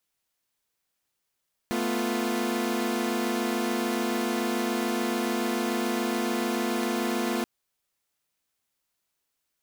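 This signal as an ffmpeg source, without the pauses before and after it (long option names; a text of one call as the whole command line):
ffmpeg -f lavfi -i "aevalsrc='0.0422*((2*mod(220*t,1)-1)+(2*mod(246.94*t,1)-1)+(2*mod(349.23*t,1)-1))':duration=5.73:sample_rate=44100" out.wav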